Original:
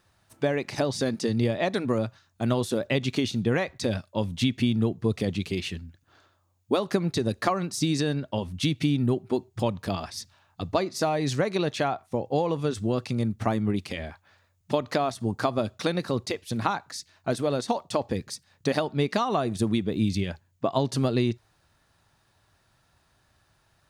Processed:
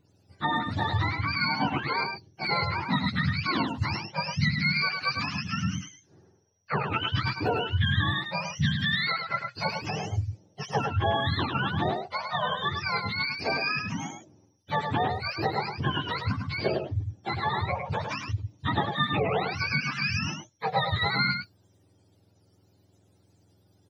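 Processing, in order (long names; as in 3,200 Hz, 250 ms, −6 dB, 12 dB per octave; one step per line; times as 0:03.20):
frequency axis turned over on the octave scale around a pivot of 720 Hz
mains-hum notches 60/120 Hz
single-tap delay 104 ms −5.5 dB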